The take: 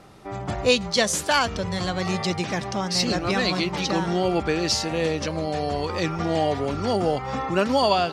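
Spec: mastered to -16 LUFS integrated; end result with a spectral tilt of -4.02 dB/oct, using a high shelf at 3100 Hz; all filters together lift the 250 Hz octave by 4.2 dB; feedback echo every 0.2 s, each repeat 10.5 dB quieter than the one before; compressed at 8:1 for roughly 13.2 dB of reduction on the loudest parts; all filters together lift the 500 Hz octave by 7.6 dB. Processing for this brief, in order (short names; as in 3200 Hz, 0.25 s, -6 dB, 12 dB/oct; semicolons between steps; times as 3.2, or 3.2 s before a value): bell 250 Hz +3 dB; bell 500 Hz +8 dB; high shelf 3100 Hz +7 dB; compressor 8:1, threshold -21 dBFS; feedback echo 0.2 s, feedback 30%, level -10.5 dB; gain +9 dB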